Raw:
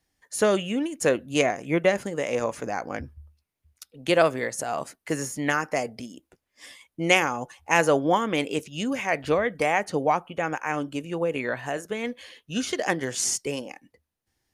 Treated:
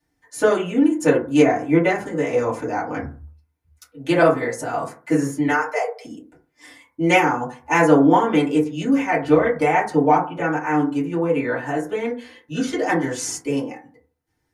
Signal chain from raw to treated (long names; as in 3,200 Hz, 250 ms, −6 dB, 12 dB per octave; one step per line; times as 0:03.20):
0:05.47–0:06.05: Chebyshev high-pass filter 410 Hz, order 10
feedback delay network reverb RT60 0.38 s, low-frequency decay 1.1×, high-frequency decay 0.3×, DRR −9.5 dB
level −6 dB